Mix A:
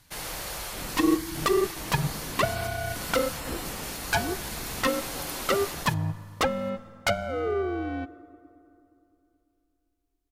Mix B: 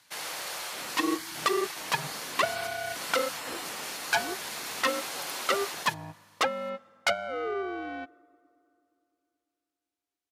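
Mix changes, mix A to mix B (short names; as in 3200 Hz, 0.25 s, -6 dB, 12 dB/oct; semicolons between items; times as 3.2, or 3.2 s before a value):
background: send -7.5 dB; master: add weighting filter A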